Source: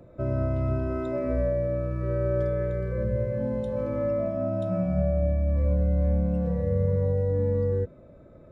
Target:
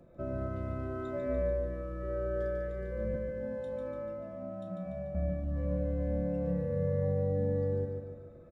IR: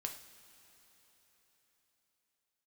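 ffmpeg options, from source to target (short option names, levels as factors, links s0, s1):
-filter_complex "[0:a]asettb=1/sr,asplit=3[s0][s1][s2];[s0]atrim=end=3.144[s3];[s1]atrim=start=3.14:end=5.15,asetpts=PTS-STARTPTS,afade=t=in:d=0.004:c=qsin,afade=t=out:st=2.006:d=0.004:c=qsin,acrossover=split=190|1000[s4][s5][s6];[s4]acompressor=threshold=0.01:ratio=4[s7];[s5]acompressor=threshold=0.0178:ratio=4[s8];[s6]acompressor=threshold=0.00355:ratio=4[s9];[s7][s8][s9]amix=inputs=3:normalize=0[s10];[s2]atrim=start=5.146[s11];[s3][s10]acrossfade=d=0.004:c1=hsin:c2=qsin[s12];[s12][s11]acrossfade=d=0.004:c1=qsin:c2=hsin,aecho=1:1:146|292|438|584|730|876:0.562|0.287|0.146|0.0746|0.038|0.0194[s13];[1:a]atrim=start_sample=2205,atrim=end_sample=3528,asetrate=74970,aresample=44100[s14];[s13][s14]afir=irnorm=-1:irlink=0"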